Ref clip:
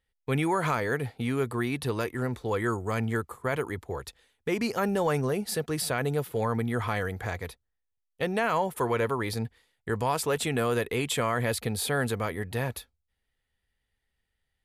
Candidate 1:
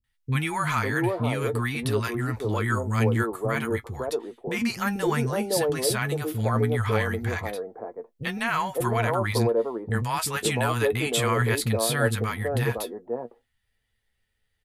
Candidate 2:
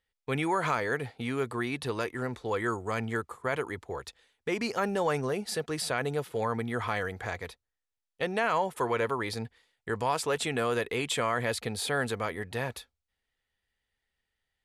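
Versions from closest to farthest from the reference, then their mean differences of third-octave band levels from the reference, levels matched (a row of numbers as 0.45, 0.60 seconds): 2, 1; 2.5, 7.0 decibels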